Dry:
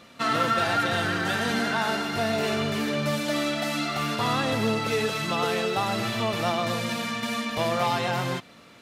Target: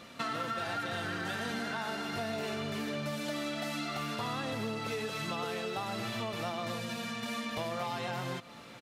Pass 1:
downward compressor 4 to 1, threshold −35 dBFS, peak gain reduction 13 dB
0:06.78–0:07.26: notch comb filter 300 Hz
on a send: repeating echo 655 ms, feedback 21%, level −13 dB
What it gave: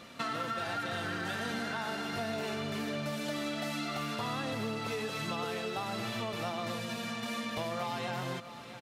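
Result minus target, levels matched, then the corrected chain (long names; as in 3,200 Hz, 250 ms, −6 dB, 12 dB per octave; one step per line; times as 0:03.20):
echo-to-direct +8 dB
downward compressor 4 to 1, threshold −35 dBFS, peak gain reduction 13 dB
0:06.78–0:07.26: notch comb filter 300 Hz
on a send: repeating echo 655 ms, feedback 21%, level −21 dB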